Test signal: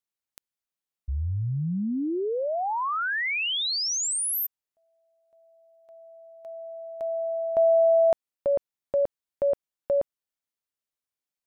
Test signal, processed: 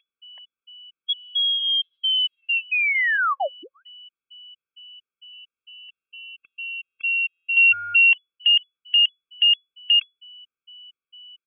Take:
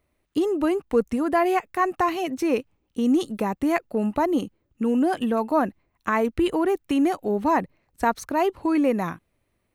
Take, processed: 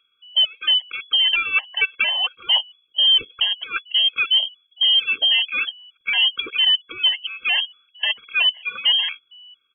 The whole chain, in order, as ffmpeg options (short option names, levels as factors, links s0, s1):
-af "aresample=11025,volume=8.91,asoftclip=hard,volume=0.112,aresample=44100,aeval=exprs='val(0)+0.00398*sin(2*PI*440*n/s)':c=same,lowpass=f=2900:t=q:w=0.5098,lowpass=f=2900:t=q:w=0.6013,lowpass=f=2900:t=q:w=0.9,lowpass=f=2900:t=q:w=2.563,afreqshift=-3400,afftfilt=real='re*gt(sin(2*PI*2.2*pts/sr)*(1-2*mod(floor(b*sr/1024/540),2)),0)':imag='im*gt(sin(2*PI*2.2*pts/sr)*(1-2*mod(floor(b*sr/1024/540),2)),0)':win_size=1024:overlap=0.75,volume=2.24"